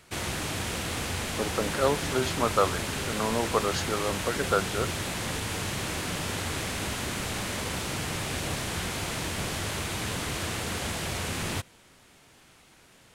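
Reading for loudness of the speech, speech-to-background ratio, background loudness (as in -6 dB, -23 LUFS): -29.5 LUFS, 1.5 dB, -31.0 LUFS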